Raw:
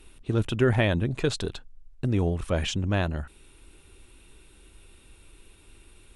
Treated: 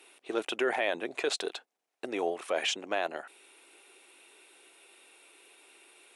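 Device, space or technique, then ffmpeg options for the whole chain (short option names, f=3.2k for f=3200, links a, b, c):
laptop speaker: -af "highpass=f=380:w=0.5412,highpass=f=380:w=1.3066,equalizer=f=730:t=o:w=0.34:g=6.5,equalizer=f=2.2k:t=o:w=0.59:g=4.5,alimiter=limit=-18.5dB:level=0:latency=1:release=25"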